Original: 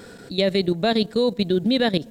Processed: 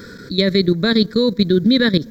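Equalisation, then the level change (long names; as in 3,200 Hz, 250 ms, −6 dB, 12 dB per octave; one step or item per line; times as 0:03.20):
phaser with its sweep stopped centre 2,800 Hz, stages 6
+8.0 dB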